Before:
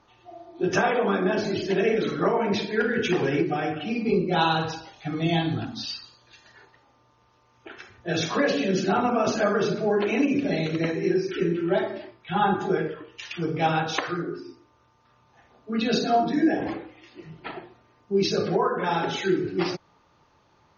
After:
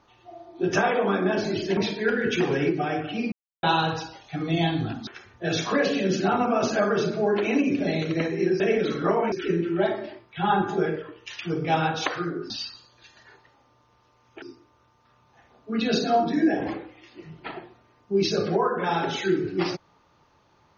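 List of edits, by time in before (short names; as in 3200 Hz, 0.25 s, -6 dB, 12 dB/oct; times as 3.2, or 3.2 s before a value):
1.77–2.49 move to 11.24
4.04–4.35 mute
5.79–7.71 move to 14.42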